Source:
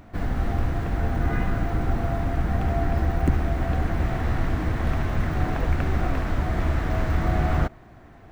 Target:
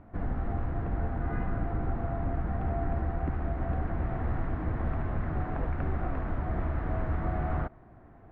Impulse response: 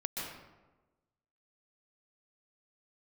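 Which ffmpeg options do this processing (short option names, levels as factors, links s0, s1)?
-filter_complex "[0:a]lowpass=1400,acrossover=split=710[s0][s1];[s0]alimiter=limit=0.141:level=0:latency=1:release=163[s2];[s2][s1]amix=inputs=2:normalize=0,volume=0.562"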